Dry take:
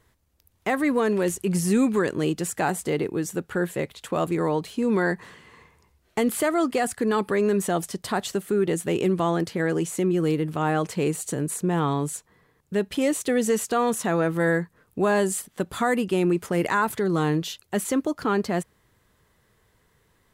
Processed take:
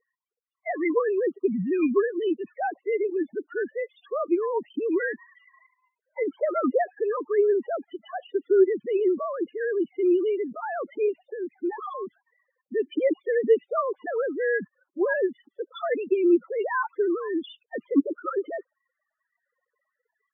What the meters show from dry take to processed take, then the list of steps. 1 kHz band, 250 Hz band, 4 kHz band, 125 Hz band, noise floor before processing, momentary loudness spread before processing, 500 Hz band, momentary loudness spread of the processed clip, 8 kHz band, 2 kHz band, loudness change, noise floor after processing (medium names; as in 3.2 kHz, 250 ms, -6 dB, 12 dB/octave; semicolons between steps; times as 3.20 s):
-5.0 dB, -3.5 dB, under -10 dB, under -20 dB, -66 dBFS, 6 LU, +1.0 dB, 12 LU, under -40 dB, -3.5 dB, -1.5 dB, -85 dBFS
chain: formants replaced by sine waves; loudest bins only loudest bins 8; trim -1.5 dB